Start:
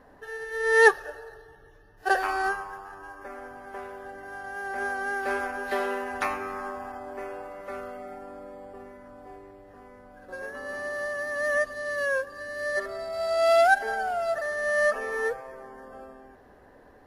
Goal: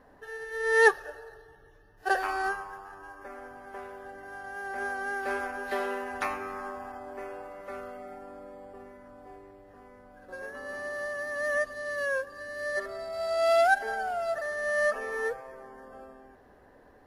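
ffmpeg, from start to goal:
ffmpeg -i in.wav -af "volume=-3dB" out.wav

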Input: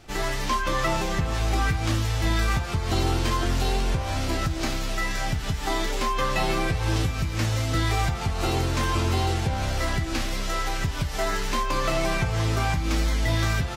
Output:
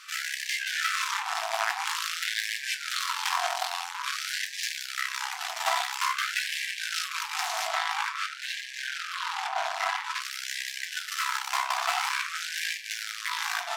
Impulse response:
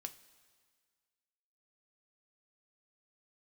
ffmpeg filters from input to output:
-filter_complex "[0:a]asoftclip=type=hard:threshold=-22.5dB,lowshelf=frequency=440:gain=11.5,asoftclip=type=tanh:threshold=-24.5dB,asettb=1/sr,asplit=3[link_01][link_02][link_03];[link_01]atrim=end=7.674[link_04];[link_02]atrim=start=7.67:end=10.21,asetpts=PTS-STARTPTS,afade=type=in:duration=0.004:curve=qsin,afade=type=out:start_time=2.536:duration=0.004:curve=qsin,lowpass=frequency=3300:poles=1[link_05];[link_03]atrim=start=10.206[link_06];[link_04][link_05]acrossfade=duration=0.004:curve1=hsin:curve2=qsin[link_07];[link_07][link_06]acrossfade=duration=0.004:curve1=qsin:curve2=hsin,dynaudnorm=framelen=220:gausssize=9:maxgain=3dB[link_08];[1:a]atrim=start_sample=2205[link_09];[link_08][link_09]afir=irnorm=-1:irlink=0,asubboost=boost=5.5:cutoff=89,alimiter=level_in=12dB:limit=-1dB:release=50:level=0:latency=1,afftfilt=real='re*gte(b*sr/1024,630*pow(1600/630,0.5+0.5*sin(2*PI*0.49*pts/sr)))':imag='im*gte(b*sr/1024,630*pow(1600/630,0.5+0.5*sin(2*PI*0.49*pts/sr)))':win_size=1024:overlap=0.75"

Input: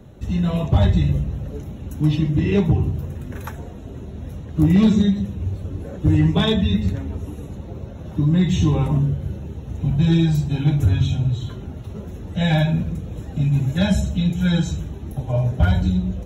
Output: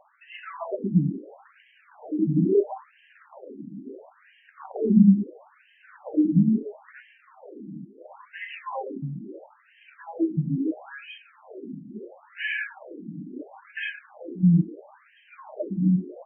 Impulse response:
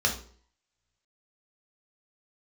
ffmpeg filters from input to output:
-filter_complex "[0:a]asettb=1/sr,asplit=3[link_01][link_02][link_03];[link_01]atrim=end=7.854[link_04];[link_02]atrim=start=7.85:end=9.16,asetpts=PTS-STARTPTS,afade=type=in:duration=0.004:curve=qsin,afade=type=out:start_time=1.306:duration=0.004:curve=qsin,equalizer=frequency=240:width_type=o:width=0.96:gain=-12.5[link_05];[link_03]atrim=start=9.156[link_06];[link_04][link_05]acrossfade=duration=0.004:curve1=hsin:curve2=qsin[link_07];[link_07][link_06]acrossfade=duration=0.004:curve1=qsin:curve2=hsin,afftfilt=real='re*between(b*sr/1024,220*pow(2300/220,0.5+0.5*sin(2*PI*0.74*pts/sr))/1.41,220*pow(2300/220,0.5+0.5*sin(2*PI*0.74*pts/sr))*1.41)':imag='im*between(b*sr/1024,220*pow(2300/220,0.5+0.5*sin(2*PI*0.74*pts/sr))/1.41,220*pow(2300/220,0.5+0.5*sin(2*PI*0.74*pts/sr))*1.41)':win_size=1024:overlap=0.75,volume=2.5dB"

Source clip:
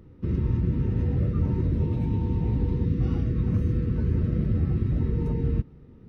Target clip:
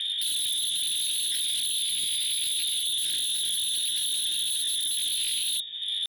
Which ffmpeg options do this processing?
ffmpeg -i in.wav -filter_complex "[0:a]bandreject=frequency=144.9:width_type=h:width=4,bandreject=frequency=289.8:width_type=h:width=4,bandreject=frequency=434.7:width_type=h:width=4,bandreject=frequency=579.6:width_type=h:width=4,lowpass=frequency=2100:width_type=q:width=0.5098,lowpass=frequency=2100:width_type=q:width=0.6013,lowpass=frequency=2100:width_type=q:width=0.9,lowpass=frequency=2100:width_type=q:width=2.563,afreqshift=-2500,acrossover=split=180|550[link_01][link_02][link_03];[link_03]acompressor=threshold=-37dB:ratio=8[link_04];[link_01][link_02][link_04]amix=inputs=3:normalize=0,aeval=exprs='0.0335*sin(PI/2*4.47*val(0)/0.0335)':channel_layout=same,asetrate=66075,aresample=44100,atempo=0.66742,afftfilt=real='re*(1-between(b*sr/4096,410,1500))':imag='im*(1-between(b*sr/4096,410,1500))':win_size=4096:overlap=0.75,volume=5dB" out.wav

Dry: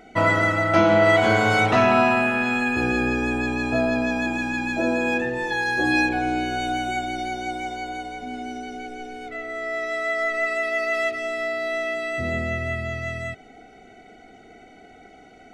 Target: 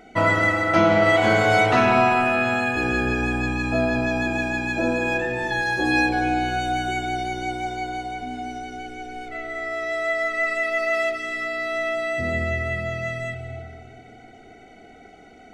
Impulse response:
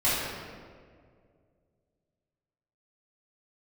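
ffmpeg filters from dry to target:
-filter_complex "[0:a]asplit=2[link_01][link_02];[link_02]bass=frequency=250:gain=3,treble=frequency=4000:gain=0[link_03];[1:a]atrim=start_sample=2205,adelay=142[link_04];[link_03][link_04]afir=irnorm=-1:irlink=0,volume=-22dB[link_05];[link_01][link_05]amix=inputs=2:normalize=0"

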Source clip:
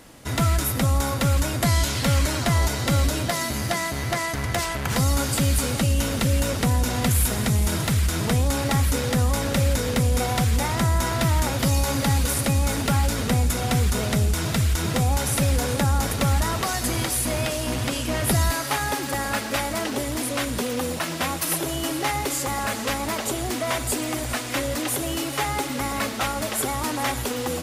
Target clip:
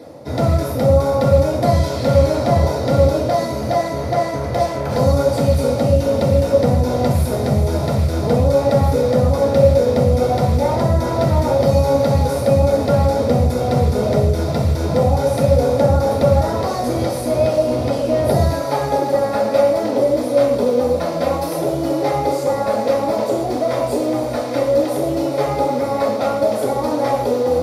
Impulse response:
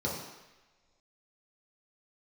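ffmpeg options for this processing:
-filter_complex "[0:a]equalizer=frequency=610:width_type=o:width=1.1:gain=14,areverse,acompressor=mode=upward:threshold=-25dB:ratio=2.5,areverse[link_01];[1:a]atrim=start_sample=2205,afade=type=out:start_time=0.21:duration=0.01,atrim=end_sample=9702[link_02];[link_01][link_02]afir=irnorm=-1:irlink=0,volume=-9dB"

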